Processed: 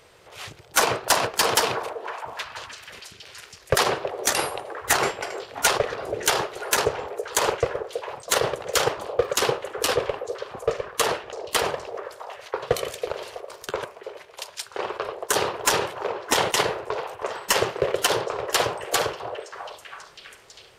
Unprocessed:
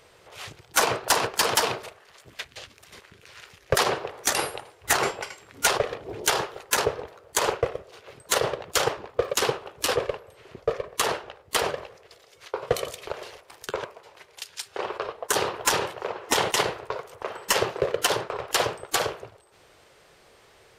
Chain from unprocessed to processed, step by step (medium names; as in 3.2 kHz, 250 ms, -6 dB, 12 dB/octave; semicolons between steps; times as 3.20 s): repeats whose band climbs or falls 326 ms, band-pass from 500 Hz, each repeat 0.7 oct, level -6.5 dB; trim +1.5 dB